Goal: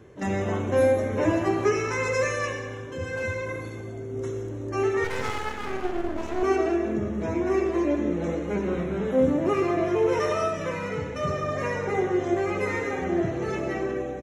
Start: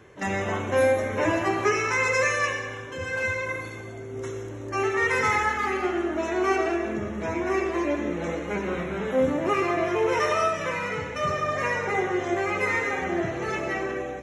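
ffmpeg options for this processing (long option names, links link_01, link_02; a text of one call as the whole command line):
ffmpeg -i in.wav -filter_complex "[0:a]firequalizer=gain_entry='entry(290,0);entry(870,-7);entry(2100,-10);entry(4000,-7)':delay=0.05:min_phase=1,asettb=1/sr,asplit=3[link_01][link_02][link_03];[link_01]atrim=end=5.044[link_04];[link_02]atrim=start=5.04:end=6.43,asetpts=PTS-STARTPTS,afade=type=in:duration=0.004:curve=qsin,afade=type=out:start_time=1.386:duration=0.004:curve=qsin,aeval=exprs='max(val(0),0)':channel_layout=same[link_05];[link_03]atrim=start=6.426[link_06];[link_04][link_05]acrossfade=duration=0.004:curve1=hsin:curve2=qsin[link_07];[link_07][link_06]acrossfade=duration=0.004:curve1=qsin:curve2=hsin,volume=3.5dB" out.wav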